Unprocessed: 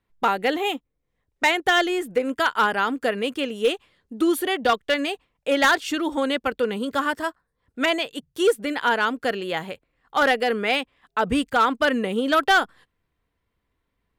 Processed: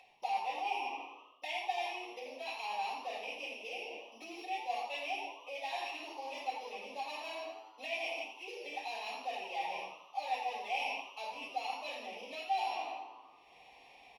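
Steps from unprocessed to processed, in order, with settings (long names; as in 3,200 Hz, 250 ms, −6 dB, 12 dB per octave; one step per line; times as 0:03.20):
samples sorted by size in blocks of 8 samples
rectangular room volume 130 cubic metres, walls mixed, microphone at 5.2 metres
reversed playback
downward compressor 10 to 1, threshold −26 dBFS, peak gain reduction 28.5 dB
reversed playback
pair of resonant band-passes 1,400 Hz, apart 1.7 octaves
spectral tilt +1.5 dB per octave
notch filter 1,500 Hz, Q 8.4
echo with shifted repeats 85 ms, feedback 40%, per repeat +110 Hz, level −10 dB
upward compression, threshold −39 dBFS
level −2 dB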